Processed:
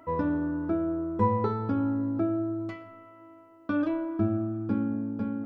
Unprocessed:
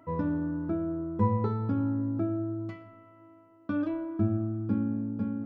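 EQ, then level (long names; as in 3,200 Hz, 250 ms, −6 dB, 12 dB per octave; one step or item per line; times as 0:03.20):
parametric band 140 Hz −10.5 dB 1.4 octaves
+5.5 dB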